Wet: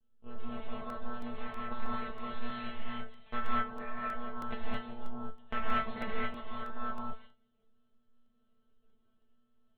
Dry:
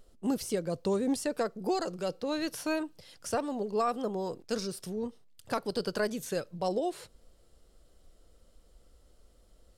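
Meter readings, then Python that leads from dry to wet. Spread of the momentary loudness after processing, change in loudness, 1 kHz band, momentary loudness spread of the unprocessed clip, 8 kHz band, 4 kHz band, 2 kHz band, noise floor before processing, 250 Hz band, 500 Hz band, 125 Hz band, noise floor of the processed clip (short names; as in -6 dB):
11 LU, -6.5 dB, -1.0 dB, 6 LU, under -30 dB, -7.5 dB, 0.0 dB, -63 dBFS, -9.0 dB, -13.5 dB, -5.0 dB, -73 dBFS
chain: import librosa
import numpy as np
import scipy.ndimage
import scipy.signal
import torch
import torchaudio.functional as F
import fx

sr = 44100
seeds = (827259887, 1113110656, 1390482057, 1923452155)

y = fx.rider(x, sr, range_db=5, speed_s=0.5)
y = fx.cheby_harmonics(y, sr, harmonics=(3, 4), levels_db=(-14, -8), full_scale_db=-15.0)
y = fx.lpc_monotone(y, sr, seeds[0], pitch_hz=120.0, order=10)
y = y + 10.0 ** (-23.0 / 20.0) * np.pad(y, (int(210 * sr / 1000.0), 0))[:len(y)]
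y = fx.dynamic_eq(y, sr, hz=2100.0, q=0.71, threshold_db=-51.0, ratio=4.0, max_db=4)
y = fx.level_steps(y, sr, step_db=9)
y = fx.low_shelf(y, sr, hz=170.0, db=4.5)
y = fx.comb_fb(y, sr, f0_hz=220.0, decay_s=0.23, harmonics='all', damping=0.0, mix_pct=100)
y = fx.rev_gated(y, sr, seeds[1], gate_ms=250, shape='rising', drr_db=-6.5)
y = fx.buffer_crackle(y, sr, first_s=0.9, period_s=0.32, block=64, kind='repeat')
y = y * 10.0 ** (4.5 / 20.0)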